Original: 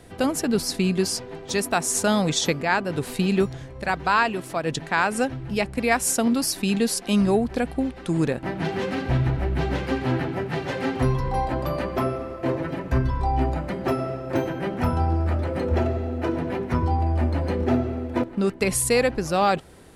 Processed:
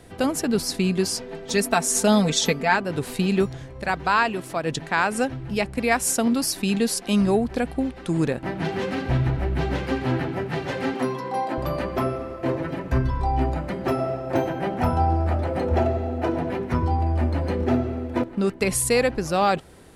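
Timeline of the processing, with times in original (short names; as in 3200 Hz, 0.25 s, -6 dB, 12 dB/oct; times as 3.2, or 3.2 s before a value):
1.19–2.76 comb 4.5 ms, depth 63%
10.94–11.58 HPF 190 Hz 24 dB/oct
13.94–16.5 bell 740 Hz +7.5 dB 0.46 oct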